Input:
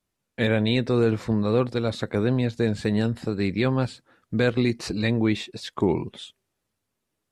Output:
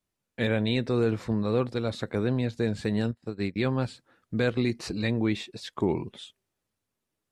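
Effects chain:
0:03.11–0:03.56: expander for the loud parts 2.5 to 1, over −41 dBFS
level −4 dB

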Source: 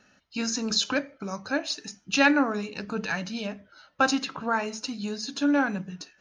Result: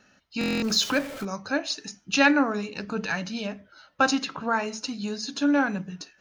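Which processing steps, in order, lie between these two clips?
0:00.64–0:01.25: converter with a step at zero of −34 dBFS
buffer that repeats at 0:00.39, samples 1,024, times 9
level +1 dB

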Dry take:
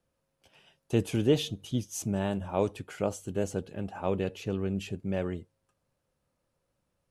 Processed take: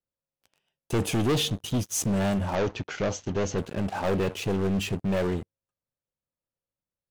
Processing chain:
leveller curve on the samples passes 5
0:02.55–0:03.58: elliptic low-pass filter 6,500 Hz, stop band 40 dB
level −8 dB

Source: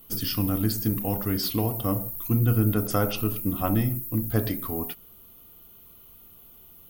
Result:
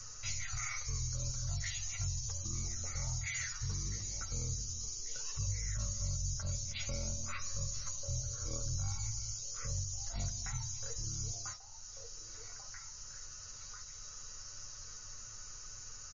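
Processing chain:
guitar amp tone stack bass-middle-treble 6-0-2
comb filter 3.8 ms
on a send: echo through a band-pass that steps 487 ms, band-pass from 1,400 Hz, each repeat 1.4 octaves, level −10.5 dB
on the sum: wrong playback speed 78 rpm record played at 33 rpm
multiband upward and downward compressor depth 70%
level +3.5 dB

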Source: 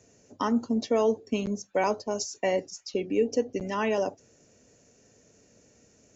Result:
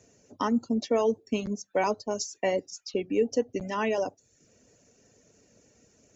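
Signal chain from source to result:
reverb reduction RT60 0.56 s

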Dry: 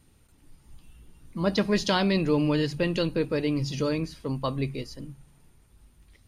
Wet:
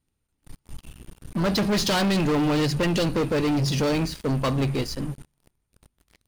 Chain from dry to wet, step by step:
leveller curve on the samples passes 5
level −7.5 dB

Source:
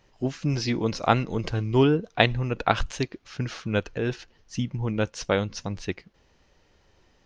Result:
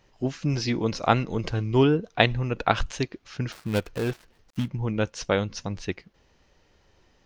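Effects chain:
0:03.52–0:04.68: gap after every zero crossing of 0.2 ms

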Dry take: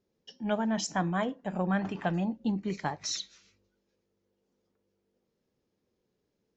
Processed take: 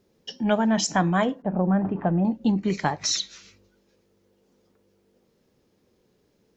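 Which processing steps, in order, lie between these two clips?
0:01.42–0:02.25: Bessel low-pass filter 720 Hz, order 2
in parallel at +2.5 dB: downward compressor, threshold −40 dBFS, peak gain reduction 15.5 dB
on the sum: level +5.5 dB

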